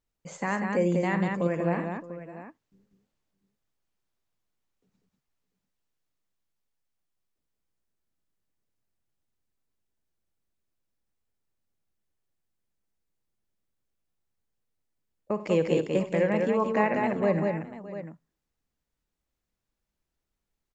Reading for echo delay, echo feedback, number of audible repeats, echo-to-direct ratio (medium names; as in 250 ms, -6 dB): 57 ms, no regular repeats, 5, -2.5 dB